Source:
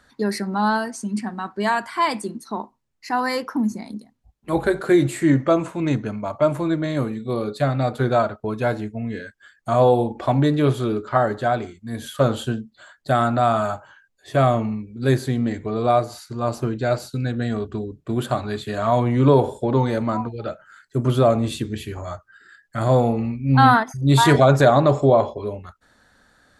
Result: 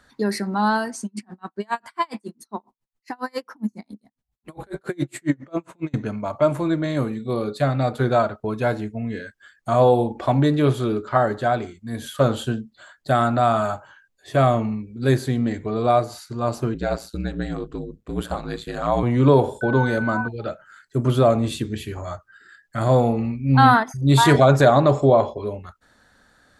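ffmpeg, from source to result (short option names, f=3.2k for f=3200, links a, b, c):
-filter_complex "[0:a]asettb=1/sr,asplit=3[a][b][c];[a]atrim=end=1.054[d];[b]atrim=start=1.05:end=5.94,asetpts=PTS-STARTPTS,afade=t=in:d=0.004:c=qsin,afade=t=out:st=4.886:d=0.004:c=qsin,aeval=exprs='val(0)*pow(10,-38*(0.5-0.5*cos(2*PI*7.3*n/s))/20)':c=same[e];[c]atrim=start=5.936[f];[d][e]acrossfade=d=0.004:c1=hsin:c2=qsin[g];[g][f]acrossfade=d=0.004:c1=qsin:c2=hsin,asettb=1/sr,asplit=3[h][i][j];[h]atrim=end=16.744[k];[i]atrim=start=16.74:end=19.03,asetpts=PTS-STARTPTS,afade=t=in:d=0.004:c=qsin,afade=t=out:st=2.286:d=0.004:c=qsin,aeval=exprs='val(0)*sin(2*PI*56*n/s)':c=same[l];[j]atrim=start=19.026[m];[k][l]acrossfade=d=0.004:c1=hsin:c2=qsin[n];[n][m]acrossfade=d=0.004:c1=qsin:c2=hsin,asettb=1/sr,asplit=3[o][p][q];[o]atrim=end=19.614[r];[p]atrim=start=19.61:end=20.28,asetpts=PTS-STARTPTS,afade=t=in:d=0.004:c=qsin,afade=t=out:st=0.666:d=0.004:c=qsin,aeval=exprs='val(0)+0.0447*sin(2*PI*1500*n/s)':c=same[s];[q]atrim=start=20.276[t];[r][s]acrossfade=d=0.004:c1=hsin:c2=qsin[u];[u][t]acrossfade=d=0.004:c1=qsin:c2=hsin"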